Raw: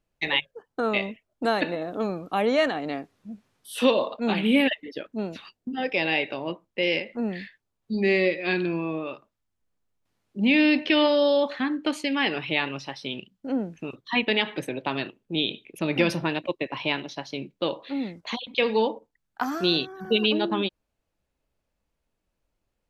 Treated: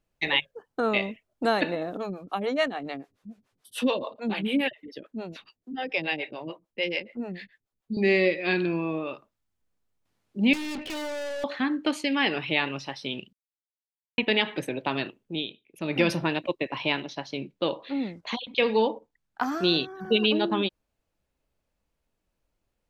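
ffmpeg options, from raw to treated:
-filter_complex "[0:a]asettb=1/sr,asplit=3[s0][s1][s2];[s0]atrim=end=1.974[s3];[s1]atrim=start=1.97:end=7.97,asetpts=PTS-STARTPTS,afade=t=in:d=0.004:c=qsin,afade=t=out:st=5.996:d=0.004:c=qsin,acrossover=split=410[s4][s5];[s4]aeval=exprs='val(0)*(1-1/2+1/2*cos(2*PI*6.9*n/s))':c=same[s6];[s5]aeval=exprs='val(0)*(1-1/2-1/2*cos(2*PI*6.9*n/s))':c=same[s7];[s6][s7]amix=inputs=2:normalize=0[s8];[s2]atrim=start=7.966[s9];[s3][s8]acrossfade=d=0.004:c1=hsin:c2=qsin[s10];[s10][s9]acrossfade=d=0.004:c1=qsin:c2=hsin,asettb=1/sr,asplit=3[s11][s12][s13];[s11]atrim=end=10.534[s14];[s12]atrim=start=10.53:end=11.44,asetpts=PTS-STARTPTS,afade=t=in:d=0.004:c=qsin,afade=t=out:st=0.906:d=0.004:c=qsin,aeval=exprs='(tanh(39.8*val(0)+0.25)-tanh(0.25))/39.8':c=same[s15];[s13]atrim=start=11.436[s16];[s14][s15]acrossfade=d=0.004:c1=hsin:c2=qsin[s17];[s17][s16]acrossfade=d=0.004:c1=qsin:c2=hsin,asettb=1/sr,asplit=3[s18][s19][s20];[s18]atrim=end=17.044[s21];[s19]atrim=start=17.04:end=20.35,asetpts=PTS-STARTPTS,afade=t=in:d=0.004:c=qsin,afade=t=out:st=3.306:d=0.004:c=qsin,highshelf=f=10000:g=-10[s22];[s20]atrim=start=20.346[s23];[s21][s22]acrossfade=d=0.004:c1=hsin:c2=qsin[s24];[s24][s23]acrossfade=d=0.004:c1=qsin:c2=hsin,asplit=5[s25][s26][s27][s28][s29];[s25]atrim=end=13.33,asetpts=PTS-STARTPTS,afade=t=out:st=13.326:d=0.004:c=hsin[s30];[s26]atrim=start=13.33:end=14.18,asetpts=PTS-STARTPTS,volume=0[s31];[s27]atrim=start=14.18:end=15.54,asetpts=PTS-STARTPTS,afade=t=in:d=0.004:c=hsin,afade=t=out:st=0.88:d=0.48:c=qsin:silence=0.158489[s32];[s28]atrim=start=15.54:end=15.68,asetpts=PTS-STARTPTS,volume=0.158[s33];[s29]atrim=start=15.68,asetpts=PTS-STARTPTS,afade=t=in:d=0.48:c=qsin:silence=0.158489[s34];[s30][s31][s32][s33][s34]concat=n=5:v=0:a=1"

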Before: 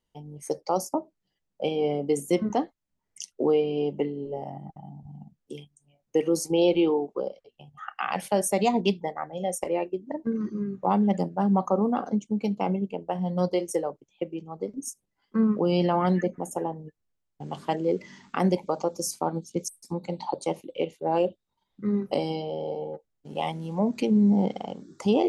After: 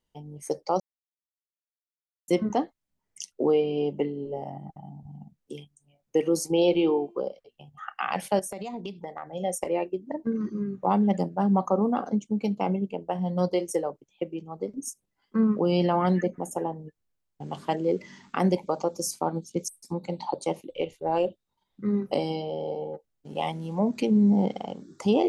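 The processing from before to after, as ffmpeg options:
-filter_complex "[0:a]asettb=1/sr,asplit=3[s0][s1][s2];[s0]atrim=end=6.614[s3];[s1]atrim=start=6.61:end=7.27,asetpts=PTS-STARTPTS,afade=t=in:d=0.004:c=qsin,afade=t=out:st=0.656:d=0.004:c=qsin,bandreject=f=344.8:t=h:w=4,bandreject=f=689.6:t=h:w=4,bandreject=f=1034.4:t=h:w=4,bandreject=f=1379.2:t=h:w=4,bandreject=f=1724:t=h:w=4,bandreject=f=2068.8:t=h:w=4,bandreject=f=2413.6:t=h:w=4,bandreject=f=2758.4:t=h:w=4,bandreject=f=3103.2:t=h:w=4,bandreject=f=3448:t=h:w=4,bandreject=f=3792.8:t=h:w=4,bandreject=f=4137.6:t=h:w=4,bandreject=f=4482.4:t=h:w=4,bandreject=f=4827.2:t=h:w=4,bandreject=f=5172:t=h:w=4,bandreject=f=5516.8:t=h:w=4,bandreject=f=5861.6:t=h:w=4,bandreject=f=6206.4:t=h:w=4,bandreject=f=6551.2:t=h:w=4,bandreject=f=6896:t=h:w=4,bandreject=f=7240.8:t=h:w=4,bandreject=f=7585.6:t=h:w=4,bandreject=f=7930.4:t=h:w=4,bandreject=f=8275.2:t=h:w=4,bandreject=f=8620:t=h:w=4,bandreject=f=8964.8:t=h:w=4,bandreject=f=9309.6:t=h:w=4,bandreject=f=9654.4:t=h:w=4,bandreject=f=9999.2:t=h:w=4,bandreject=f=10344:t=h:w=4,bandreject=f=10688.8:t=h:w=4,bandreject=f=11033.6:t=h:w=4,bandreject=f=11378.4:t=h:w=4,bandreject=f=11723.2:t=h:w=4[s4];[s2]atrim=start=7.266[s5];[s3][s4]acrossfade=d=0.004:c1=hsin:c2=qsin[s6];[s6][s5]acrossfade=d=0.004:c1=qsin:c2=hsin,asettb=1/sr,asplit=3[s7][s8][s9];[s7]atrim=end=8.394[s10];[s8]atrim=start=8.39:end=9.28,asetpts=PTS-STARTPTS,afade=t=in:d=0.004:c=qsin,afade=t=out:st=0.886:d=0.004:c=qsin,acompressor=threshold=0.0282:ratio=16:attack=3.2:release=140:knee=1:detection=peak[s11];[s9]atrim=start=9.276[s12];[s10][s11]acrossfade=d=0.004:c1=hsin:c2=qsin[s13];[s13][s12]acrossfade=d=0.004:c1=qsin:c2=hsin,asplit=3[s14][s15][s16];[s14]afade=t=out:st=20.69:d=0.02[s17];[s15]asubboost=boost=8.5:cutoff=65,afade=t=in:st=20.69:d=0.02,afade=t=out:st=21.26:d=0.02[s18];[s16]afade=t=in:st=21.26:d=0.02[s19];[s17][s18][s19]amix=inputs=3:normalize=0,asplit=3[s20][s21][s22];[s20]atrim=end=0.8,asetpts=PTS-STARTPTS,afade=t=out:st=0.796:d=0.004:c=hsin[s23];[s21]atrim=start=0.8:end=2.28,asetpts=PTS-STARTPTS,volume=0[s24];[s22]atrim=start=2.28,asetpts=PTS-STARTPTS,afade=t=in:d=0.004:c=hsin[s25];[s23][s24][s25]concat=n=3:v=0:a=1"

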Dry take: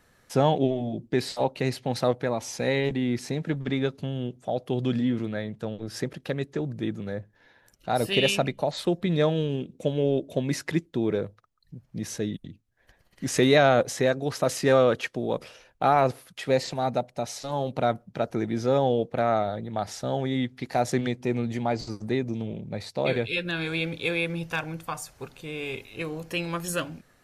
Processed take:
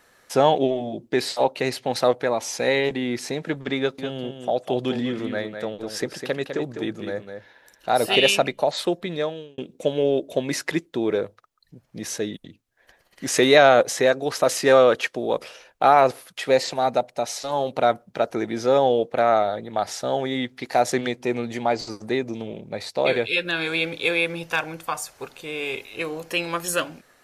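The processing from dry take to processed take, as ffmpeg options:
-filter_complex "[0:a]asettb=1/sr,asplit=3[s0][s1][s2];[s0]atrim=end=3.784[s3];[s1]atrim=start=3.78:end=8.16,asetpts=PTS-STARTPTS,afade=t=in:d=0.004:c=qsin,afade=t=out:st=4.376:d=0.004:c=qsin,aecho=1:1:203:0.422,atrim=end_sample=193158[s4];[s2]atrim=start=8.156[s5];[s3][s4]acrossfade=d=0.004:c1=hsin:c2=qsin[s6];[s6][s5]acrossfade=d=0.004:c1=qsin:c2=hsin,asplit=2[s7][s8];[s7]atrim=end=9.58,asetpts=PTS-STARTPTS,afade=t=out:st=8.8:d=0.78[s9];[s8]atrim=start=9.58,asetpts=PTS-STARTPTS,afade=t=in:d=0.004:c=hsin[s10];[s9][s10]concat=n=2:v=0:a=1,bass=f=250:g=-13,treble=f=4000:g=0,volume=2"

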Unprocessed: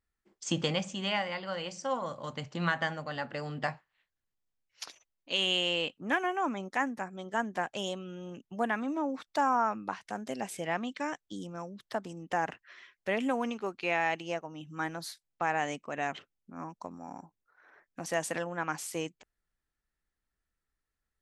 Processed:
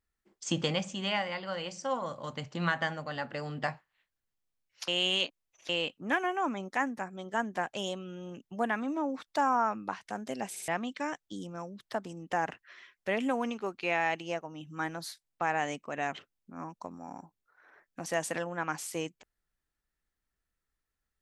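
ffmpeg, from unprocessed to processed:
-filter_complex "[0:a]asplit=6[s0][s1][s2][s3][s4][s5];[s0]atrim=end=4.882[s6];[s1]atrim=start=4.878:end=5.692,asetpts=PTS-STARTPTS,areverse[s7];[s2]atrim=start=5.688:end=10.562[s8];[s3]atrim=start=10.498:end=10.562[s9];[s4]atrim=start=10.498:end=10.562[s10];[s5]atrim=start=10.678[s11];[s6][s7]acrossfade=d=0.004:c1=hsin:c2=hsin[s12];[s12][s8]acrossfade=d=0.004:c1=hsin:c2=hsin[s13];[s13][s9]acrossfade=d=0.004:c1=hsin:c2=hsin[s14];[s14][s10]acrossfade=d=0.004:c1=hsin:c2=hsin[s15];[s15][s11]acrossfade=d=0.004:c1=hsin:c2=hsin"

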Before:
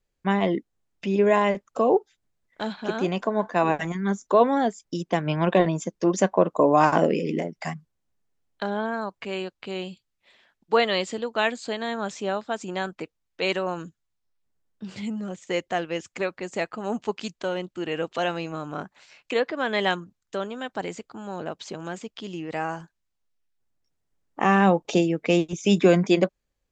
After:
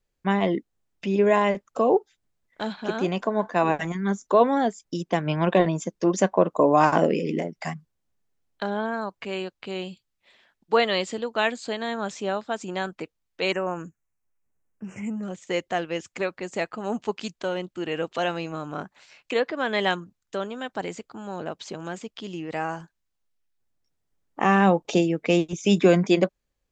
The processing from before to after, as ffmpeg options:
-filter_complex "[0:a]asettb=1/sr,asplit=3[s0][s1][s2];[s0]atrim=end=13.524[s3];[s1]atrim=start=13.52:end=15.23,asetpts=PTS-STARTPTS,afade=t=in:d=0.004:c=qsin,afade=t=out:st=1.706:d=0.004:c=qsin,asuperstop=centerf=4000:order=8:qfactor=1.3[s4];[s2]atrim=start=15.226[s5];[s3][s4]acrossfade=d=0.004:c1=hsin:c2=qsin[s6];[s6][s5]acrossfade=d=0.004:c1=qsin:c2=hsin"

